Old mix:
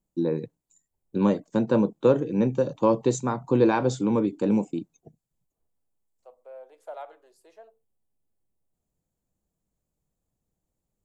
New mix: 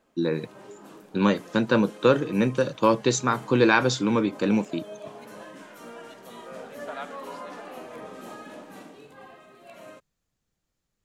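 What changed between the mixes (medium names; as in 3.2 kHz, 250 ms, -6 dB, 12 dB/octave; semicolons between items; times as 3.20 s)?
background: unmuted; master: add high-order bell 2.7 kHz +12 dB 2.6 oct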